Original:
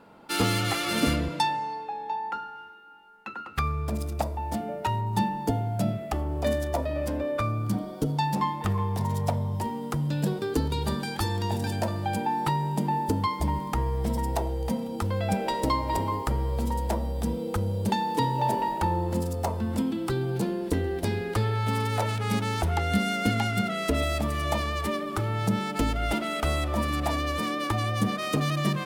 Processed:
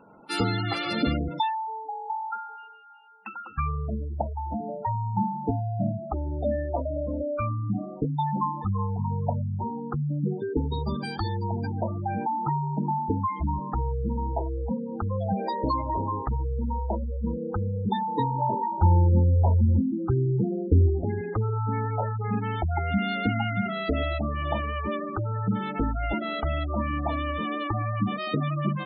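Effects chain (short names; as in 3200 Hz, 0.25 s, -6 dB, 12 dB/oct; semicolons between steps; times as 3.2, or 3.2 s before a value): spectral gate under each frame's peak -15 dB strong; 18.79–21.02 bell 84 Hz +12.5 dB 1.3 oct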